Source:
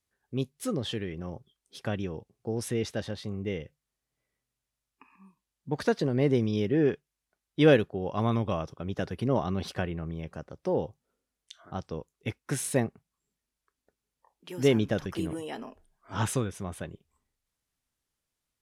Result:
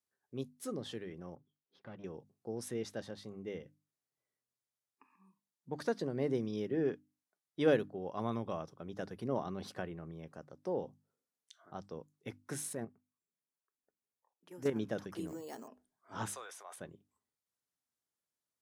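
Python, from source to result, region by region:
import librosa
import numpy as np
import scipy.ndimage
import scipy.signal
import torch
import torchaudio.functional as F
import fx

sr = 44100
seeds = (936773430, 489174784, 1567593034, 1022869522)

y = fx.chain(x, sr, fx.tube_stage(drive_db=31.0, bias=0.75),
    fx.air_absorb(metres=280.0), at=(1.35, 2.04))
y = fx.chain(y, sr, fx.peak_eq(hz=4100.0, db=-6.5, octaves=1.0),
    fx.level_steps(step_db=10),
    fx.doppler_dist(depth_ms=0.2), at=(12.73, 14.76))
y = fx.chain(y, sr, fx.air_absorb(metres=97.0),
    fx.resample_bad(factor=6, down='none', up='hold'), at=(15.27, 15.68))
y = fx.chain(y, sr, fx.highpass(hz=650.0, slope=24),
    fx.sustainer(db_per_s=38.0), at=(16.35, 16.76))
y = scipy.signal.sosfilt(scipy.signal.bessel(2, 170.0, 'highpass', norm='mag', fs=sr, output='sos'), y)
y = fx.peak_eq(y, sr, hz=2700.0, db=-6.0, octaves=0.94)
y = fx.hum_notches(y, sr, base_hz=50, count=6)
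y = y * librosa.db_to_amplitude(-7.5)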